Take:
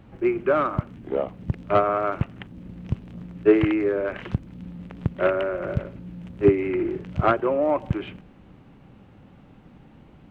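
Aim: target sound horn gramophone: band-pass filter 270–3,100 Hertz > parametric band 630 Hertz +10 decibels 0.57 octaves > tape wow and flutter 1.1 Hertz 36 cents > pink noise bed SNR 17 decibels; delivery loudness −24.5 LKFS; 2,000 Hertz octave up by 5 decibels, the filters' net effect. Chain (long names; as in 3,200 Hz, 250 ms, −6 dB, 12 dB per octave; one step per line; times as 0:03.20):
band-pass filter 270–3,100 Hz
parametric band 630 Hz +10 dB 0.57 octaves
parametric band 2,000 Hz +7 dB
tape wow and flutter 1.1 Hz 36 cents
pink noise bed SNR 17 dB
level −5.5 dB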